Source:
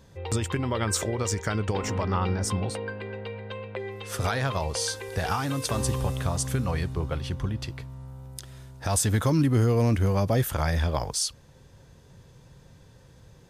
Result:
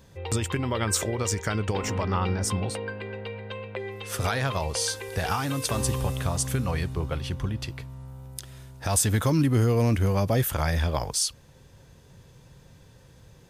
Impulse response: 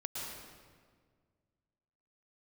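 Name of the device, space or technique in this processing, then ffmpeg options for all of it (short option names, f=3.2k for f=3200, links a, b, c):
presence and air boost: -af "equalizer=f=2.6k:t=o:w=0.77:g=2.5,highshelf=f=11k:g=7"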